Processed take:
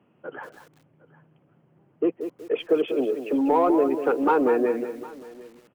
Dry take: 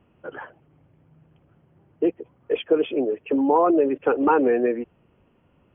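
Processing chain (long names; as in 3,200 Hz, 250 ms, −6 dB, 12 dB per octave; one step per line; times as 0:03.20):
high-pass filter 130 Hz 24 dB per octave
high-shelf EQ 3,000 Hz −4 dB
in parallel at −4 dB: soft clipping −16 dBFS, distortion −14 dB
on the sum: single-tap delay 757 ms −21 dB
feedback echo at a low word length 192 ms, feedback 35%, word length 7 bits, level −9 dB
level −5 dB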